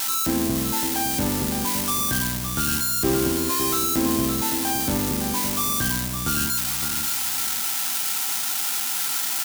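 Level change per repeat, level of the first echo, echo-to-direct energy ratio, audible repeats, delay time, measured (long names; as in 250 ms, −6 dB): −11.5 dB, −8.0 dB, −7.5 dB, 3, 563 ms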